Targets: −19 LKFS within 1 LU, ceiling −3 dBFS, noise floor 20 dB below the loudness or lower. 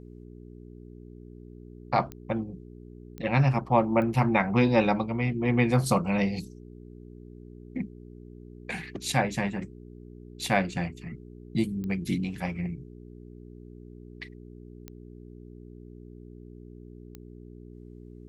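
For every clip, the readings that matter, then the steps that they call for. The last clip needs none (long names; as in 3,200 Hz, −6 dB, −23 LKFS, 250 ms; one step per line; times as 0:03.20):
number of clicks 6; mains hum 60 Hz; hum harmonics up to 420 Hz; level of the hum −43 dBFS; integrated loudness −27.5 LKFS; sample peak −8.5 dBFS; target loudness −19.0 LKFS
→ click removal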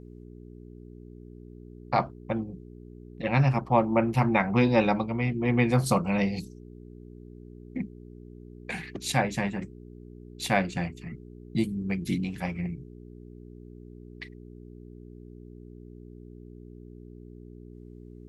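number of clicks 0; mains hum 60 Hz; hum harmonics up to 420 Hz; level of the hum −43 dBFS
→ hum removal 60 Hz, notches 7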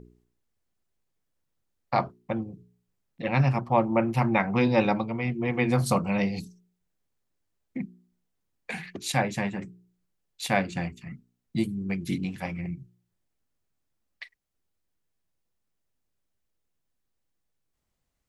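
mains hum none found; integrated loudness −28.0 LKFS; sample peak −8.5 dBFS; target loudness −19.0 LKFS
→ level +9 dB
brickwall limiter −3 dBFS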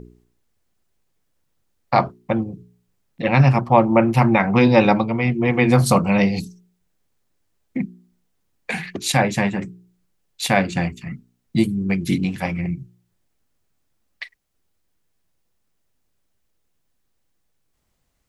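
integrated loudness −19.0 LKFS; sample peak −3.0 dBFS; background noise floor −70 dBFS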